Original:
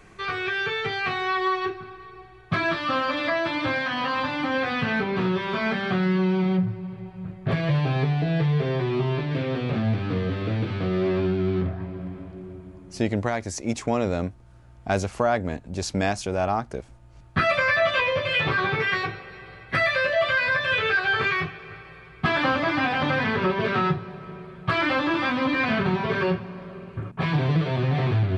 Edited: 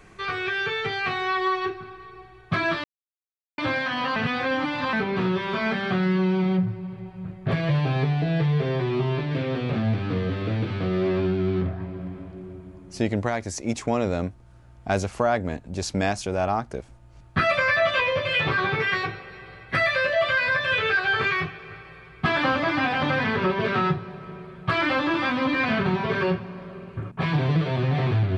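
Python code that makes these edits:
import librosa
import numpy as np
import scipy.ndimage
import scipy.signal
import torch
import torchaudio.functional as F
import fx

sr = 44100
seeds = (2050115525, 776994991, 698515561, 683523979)

y = fx.edit(x, sr, fx.silence(start_s=2.84, length_s=0.74),
    fx.reverse_span(start_s=4.16, length_s=0.77), tone=tone)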